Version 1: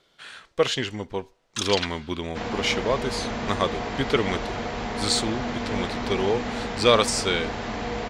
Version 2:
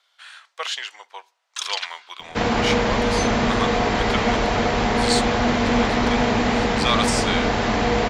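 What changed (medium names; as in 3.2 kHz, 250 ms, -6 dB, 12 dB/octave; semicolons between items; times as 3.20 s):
speech: add high-pass 790 Hz 24 dB/octave; second sound +10.0 dB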